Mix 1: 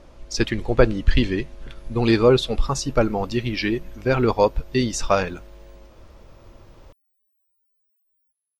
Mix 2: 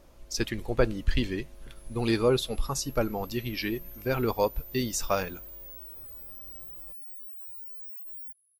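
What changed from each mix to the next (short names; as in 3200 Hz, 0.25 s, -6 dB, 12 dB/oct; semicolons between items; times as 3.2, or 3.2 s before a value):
speech -8.5 dB; master: remove air absorption 77 m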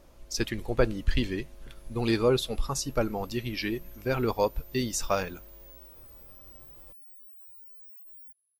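background -7.5 dB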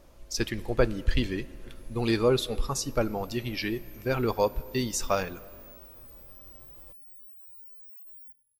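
reverb: on, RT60 2.4 s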